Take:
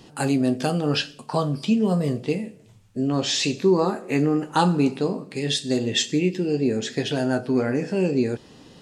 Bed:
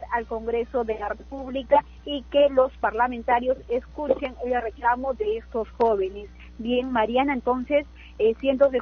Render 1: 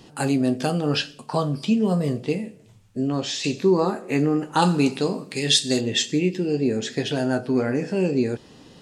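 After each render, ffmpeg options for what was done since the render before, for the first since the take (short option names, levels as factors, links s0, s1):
-filter_complex "[0:a]asettb=1/sr,asplit=3[s0][s1][s2];[s0]atrim=end=4.624[s3];[s1]atrim=start=4.62:end=5.81,asetpts=PTS-STARTPTS,afade=t=in:d=0.004:c=qsin,afade=t=out:st=1.186:d=0.004:c=qsin,highshelf=f=2000:g=9[s4];[s2]atrim=start=5.806[s5];[s3][s4]acrossfade=d=0.004:c1=hsin:c2=qsin[s6];[s6][s5]acrossfade=d=0.004:c1=qsin:c2=hsin,asplit=2[s7][s8];[s7]atrim=end=3.44,asetpts=PTS-STARTPTS,afade=t=out:st=3.01:d=0.43:silence=0.446684[s9];[s8]atrim=start=3.44,asetpts=PTS-STARTPTS,afade=t=in:d=0.004:c=hsin:silence=0.446684[s10];[s9][s10]concat=n=2:v=0:a=1"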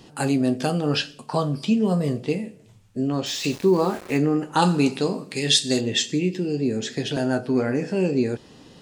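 -filter_complex "[0:a]asettb=1/sr,asplit=3[s0][s1][s2];[s0]atrim=end=3.264[s3];[s1]atrim=start=3.26:end=4.18,asetpts=PTS-STARTPTS,afade=t=in:d=0.004:c=qsin,afade=t=out:st=0.916:d=0.004:c=qsin,aeval=exprs='val(0)*gte(abs(val(0)),0.0168)':c=same[s4];[s2]atrim=start=4.176[s5];[s3][s4]acrossfade=d=0.004:c1=hsin:c2=qsin[s6];[s6][s5]acrossfade=d=0.004:c1=qsin:c2=hsin,asettb=1/sr,asplit=3[s7][s8][s9];[s7]atrim=end=6.004[s10];[s8]atrim=start=6:end=7.17,asetpts=PTS-STARTPTS,afade=t=in:d=0.004:c=qsin,afade=t=out:st=1.166:d=0.004:c=qsin,acrossover=split=360|3000[s11][s12][s13];[s12]acompressor=threshold=0.0251:ratio=2.5:attack=3.2:release=140:knee=2.83:detection=peak[s14];[s11][s14][s13]amix=inputs=3:normalize=0[s15];[s9]atrim=start=7.166[s16];[s10][s15]acrossfade=d=0.004:c1=hsin:c2=qsin[s17];[s17][s16]acrossfade=d=0.004:c1=qsin:c2=hsin"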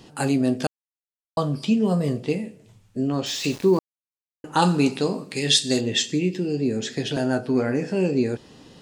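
-filter_complex "[0:a]asplit=5[s0][s1][s2][s3][s4];[s0]atrim=end=0.67,asetpts=PTS-STARTPTS,afade=t=out:st=0.666:d=0.004:c=hsin[s5];[s1]atrim=start=0.67:end=1.37,asetpts=PTS-STARTPTS,volume=0[s6];[s2]atrim=start=1.37:end=3.79,asetpts=PTS-STARTPTS,afade=t=in:d=0.004:c=hsin,afade=t=out:st=2.416:d=0.004:c=hsin[s7];[s3]atrim=start=3.79:end=4.44,asetpts=PTS-STARTPTS,volume=0[s8];[s4]atrim=start=4.44,asetpts=PTS-STARTPTS,afade=t=in:d=0.004:c=hsin[s9];[s5][s6][s7][s8][s9]concat=n=5:v=0:a=1"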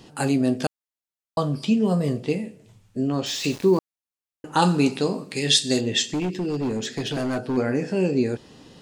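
-filter_complex "[0:a]asplit=3[s0][s1][s2];[s0]afade=t=out:st=6.09:d=0.02[s3];[s1]volume=11.9,asoftclip=hard,volume=0.0841,afade=t=in:st=6.09:d=0.02,afade=t=out:st=7.56:d=0.02[s4];[s2]afade=t=in:st=7.56:d=0.02[s5];[s3][s4][s5]amix=inputs=3:normalize=0"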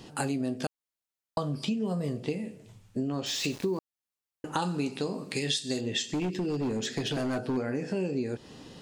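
-af "acompressor=threshold=0.0398:ratio=5"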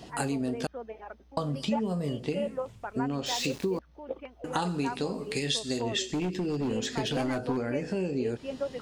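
-filter_complex "[1:a]volume=0.178[s0];[0:a][s0]amix=inputs=2:normalize=0"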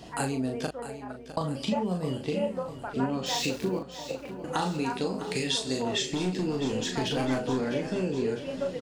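-filter_complex "[0:a]asplit=2[s0][s1];[s1]adelay=38,volume=0.562[s2];[s0][s2]amix=inputs=2:normalize=0,aecho=1:1:655|1310|1965|2620|3275|3930:0.237|0.135|0.077|0.0439|0.025|0.0143"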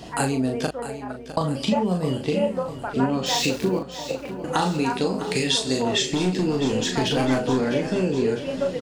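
-af "volume=2.11"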